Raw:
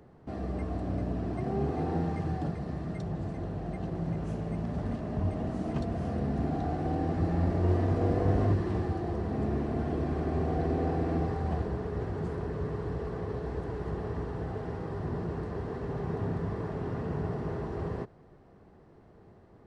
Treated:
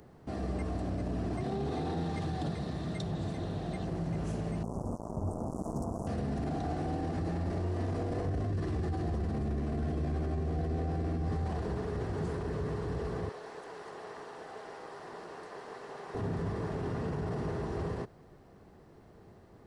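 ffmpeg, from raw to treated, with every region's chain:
-filter_complex "[0:a]asettb=1/sr,asplit=3[a][b][c];[a]atrim=end=1.424[d];[b]atrim=start=1.42:end=3.83,asetpts=PTS-STARTPTS,afade=t=in:d=0.004:c=qsin,afade=t=out:st=2.406:d=0.004:c=qsin,highpass=61,equalizer=f=3.7k:w=4.2:g=11[e];[c]atrim=start=3.826[f];[d][e]acrossfade=d=0.004:c1=hsin:c2=qsin[g];[g][f]acrossfade=d=0.004:c1=qsin:c2=hsin,asettb=1/sr,asplit=3[h][i][j];[h]atrim=end=4.634[k];[i]atrim=start=4.63:end=6.07,asetpts=PTS-STARTPTS,afade=t=in:d=0.004:c=qsin,afade=t=out:st=1.436:d=0.004:c=qsin,bandreject=f=78.79:t=h:w=4,bandreject=f=157.58:t=h:w=4,acrusher=bits=4:mix=0:aa=0.5,asuperstop=centerf=2600:order=8:qfactor=0.5[l];[j]atrim=start=6.066[m];[k][l]acrossfade=d=0.004:c1=hsin:c2=qsin[n];[n][m]acrossfade=d=0.004:c1=qsin:c2=hsin,asettb=1/sr,asplit=3[o][p][q];[o]atrim=end=8.274[r];[p]atrim=start=8.27:end=11.45,asetpts=PTS-STARTPTS,afade=t=in:d=0.004:c=qsin,afade=t=out:st=3.176:d=0.004:c=qsin,lowshelf=f=190:g=7,bandreject=f=900:w=8.2,asplit=2[s][t];[t]adelay=13,volume=-5.5dB[u];[s][u]amix=inputs=2:normalize=0,atrim=end_sample=140238[v];[q]atrim=start=11.446[w];[r][v]acrossfade=d=0.004:c1=hsin:c2=qsin[x];[x][w]acrossfade=d=0.004:c1=qsin:c2=hsin,asettb=1/sr,asplit=3[y][z][aa];[y]atrim=end=13.294[ab];[z]atrim=start=13.29:end=16.15,asetpts=PTS-STARTPTS,afade=t=in:d=0.004:c=qsin,afade=t=out:st=2.856:d=0.004:c=qsin,highpass=580,tremolo=f=260:d=0.462[ac];[aa]atrim=start=16.146[ad];[ab][ac]acrossfade=d=0.004:c1=hsin:c2=qsin[ae];[ae][ad]acrossfade=d=0.004:c1=qsin:c2=hsin,alimiter=level_in=3dB:limit=-24dB:level=0:latency=1:release=20,volume=-3dB,highshelf=f=3.9k:g=11"

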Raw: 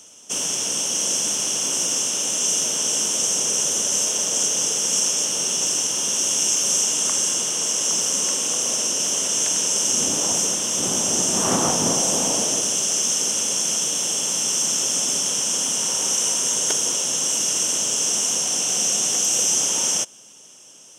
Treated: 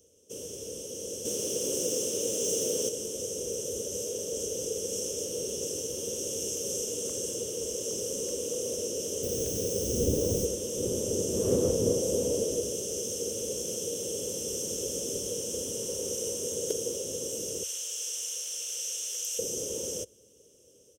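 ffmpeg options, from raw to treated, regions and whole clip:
-filter_complex "[0:a]asettb=1/sr,asplit=3[a][b][c];[a]atrim=end=1.254[d];[b]atrim=start=1.25:end=2.89,asetpts=PTS-STARTPTS,afade=t=in:d=0.004:c=qsin,afade=t=out:st=1.636:d=0.004:c=qsin,highpass=130,acontrast=70[e];[c]atrim=start=2.886[f];[d][e]acrossfade=d=0.004:c1=hsin:c2=qsin[g];[g][f]acrossfade=d=0.004:c1=qsin:c2=hsin,asettb=1/sr,asplit=3[h][i][j];[h]atrim=end=9.234[k];[i]atrim=start=9.23:end=10.45,asetpts=PTS-STARTPTS,afade=t=in:d=0.004:c=qsin,afade=t=out:st=1.216:d=0.004:c=qsin,lowshelf=f=250:g=11,bandreject=f=7.3k:w=13,acrusher=bits=4:mix=0:aa=0.5[l];[j]atrim=start=10.446[m];[k][l]acrossfade=d=0.004:c1=hsin:c2=qsin[n];[n][m]acrossfade=d=0.004:c1=qsin:c2=hsin,asettb=1/sr,asplit=3[o][p][q];[o]atrim=end=17.634[r];[p]atrim=start=17.63:end=19.39,asetpts=PTS-STARTPTS,afade=t=in:d=0.004:c=qsin,afade=t=out:st=1.756:d=0.004:c=qsin,highpass=1.4k,equalizer=f=2.2k:w=0.56:g=6.5[s];[q]atrim=start=19.386[t];[r][s]acrossfade=d=0.004:c1=hsin:c2=qsin[u];[u][t]acrossfade=d=0.004:c1=qsin:c2=hsin,equalizer=f=64:w=4:g=9,dynaudnorm=f=870:g=3:m=6.5dB,firequalizer=gain_entry='entry(100,0);entry(150,-12);entry(280,-11);entry(480,2);entry(750,-30);entry(2000,-29);entry(2900,-23);entry(4200,-21);entry(8300,-19);entry(14000,-6)':delay=0.05:min_phase=1"

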